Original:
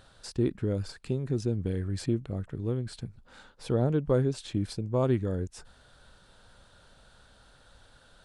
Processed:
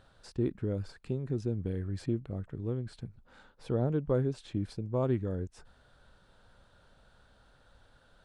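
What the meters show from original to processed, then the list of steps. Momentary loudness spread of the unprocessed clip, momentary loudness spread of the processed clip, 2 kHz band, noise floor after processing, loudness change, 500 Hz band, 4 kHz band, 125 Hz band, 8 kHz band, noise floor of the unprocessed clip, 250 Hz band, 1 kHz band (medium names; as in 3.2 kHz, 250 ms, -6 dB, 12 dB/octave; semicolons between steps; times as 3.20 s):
11 LU, 11 LU, -5.5 dB, -64 dBFS, -3.5 dB, -3.5 dB, -9.0 dB, -3.5 dB, under -10 dB, -59 dBFS, -3.5 dB, -4.0 dB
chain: treble shelf 3.5 kHz -9.5 dB; trim -3.5 dB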